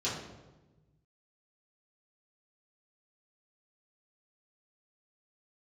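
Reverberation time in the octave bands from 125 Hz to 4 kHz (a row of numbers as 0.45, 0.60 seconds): 2.1, 1.5, 1.3, 1.0, 0.85, 0.75 seconds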